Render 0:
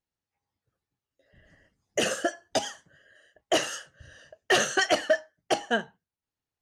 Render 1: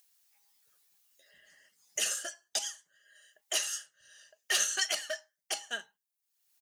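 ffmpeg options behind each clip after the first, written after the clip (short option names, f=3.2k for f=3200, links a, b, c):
-af "aderivative,aecho=1:1:4.9:0.3,acompressor=mode=upward:threshold=-55dB:ratio=2.5,volume=3dB"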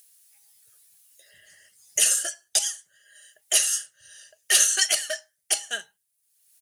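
-af "equalizer=f=100:t=o:w=0.67:g=11,equalizer=f=250:t=o:w=0.67:g=-8,equalizer=f=1k:t=o:w=0.67:g=-8,equalizer=f=10k:t=o:w=0.67:g=11,volume=7dB"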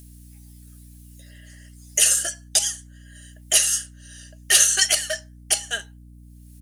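-af "aeval=exprs='val(0)+0.00447*(sin(2*PI*60*n/s)+sin(2*PI*2*60*n/s)/2+sin(2*PI*3*60*n/s)/3+sin(2*PI*4*60*n/s)/4+sin(2*PI*5*60*n/s)/5)':c=same,volume=3dB"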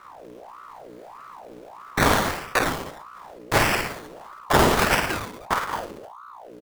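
-af "acrusher=samples=23:mix=1:aa=0.000001:lfo=1:lforange=13.8:lforate=0.76,aecho=1:1:50|105|165.5|232|305.3:0.631|0.398|0.251|0.158|0.1,aeval=exprs='val(0)*sin(2*PI*800*n/s+800*0.55/1.6*sin(2*PI*1.6*n/s))':c=same"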